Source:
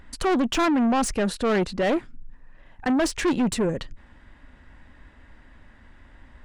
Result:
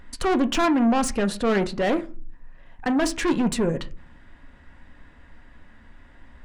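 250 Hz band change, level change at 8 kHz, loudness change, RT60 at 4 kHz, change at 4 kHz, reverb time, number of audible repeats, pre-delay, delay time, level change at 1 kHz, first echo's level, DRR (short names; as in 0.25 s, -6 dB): +1.0 dB, 0.0 dB, +0.5 dB, 0.20 s, 0.0 dB, 0.40 s, none, 4 ms, none, +0.5 dB, none, 9.0 dB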